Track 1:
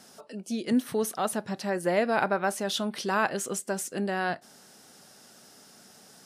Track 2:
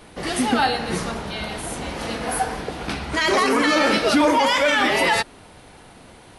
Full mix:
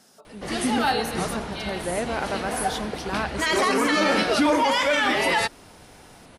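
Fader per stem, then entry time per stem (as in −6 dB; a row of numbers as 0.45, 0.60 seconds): −3.0, −3.0 decibels; 0.00, 0.25 seconds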